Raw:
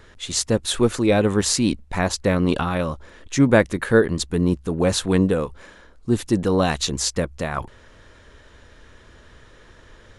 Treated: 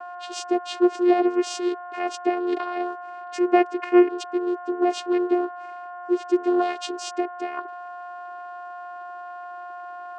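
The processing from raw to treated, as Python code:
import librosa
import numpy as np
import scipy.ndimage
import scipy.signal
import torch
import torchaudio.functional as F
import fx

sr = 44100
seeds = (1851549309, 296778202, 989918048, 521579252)

y = x + 10.0 ** (-32.0 / 20.0) * np.sin(2.0 * np.pi * 880.0 * np.arange(len(x)) / sr)
y = fx.vocoder(y, sr, bands=8, carrier='saw', carrier_hz=355.0)
y = fx.bass_treble(y, sr, bass_db=-10, treble_db=-1)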